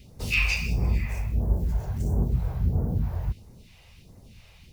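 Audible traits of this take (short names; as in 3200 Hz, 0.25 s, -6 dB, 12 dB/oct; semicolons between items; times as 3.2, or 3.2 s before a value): phasing stages 2, 1.5 Hz, lowest notch 220–2800 Hz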